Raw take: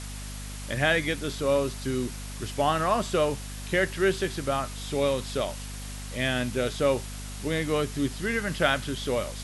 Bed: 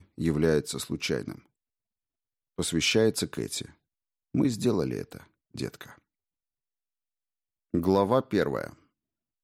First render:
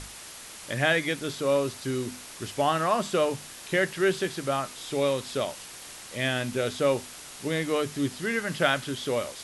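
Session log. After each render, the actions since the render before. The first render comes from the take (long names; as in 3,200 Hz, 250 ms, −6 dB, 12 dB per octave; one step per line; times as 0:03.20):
mains-hum notches 50/100/150/200/250 Hz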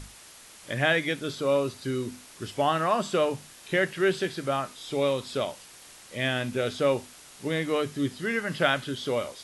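noise reduction from a noise print 6 dB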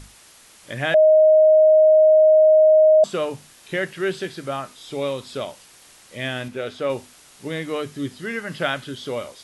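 0:00.94–0:03.04: beep over 624 Hz −9.5 dBFS
0:06.48–0:06.90: bass and treble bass −6 dB, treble −7 dB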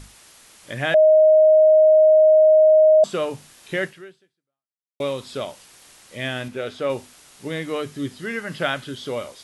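0:03.85–0:05.00: fade out exponential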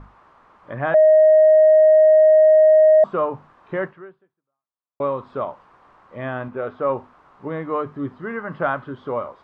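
soft clipping −10.5 dBFS, distortion −20 dB
low-pass with resonance 1,100 Hz, resonance Q 3.4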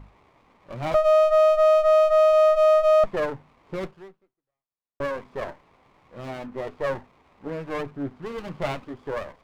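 flanger 0.43 Hz, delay 1 ms, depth 7 ms, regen −46%
windowed peak hold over 17 samples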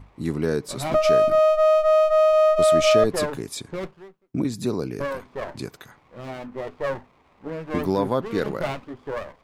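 mix in bed 0 dB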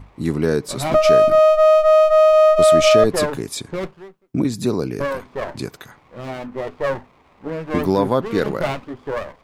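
level +5 dB
brickwall limiter −3 dBFS, peak gain reduction 2 dB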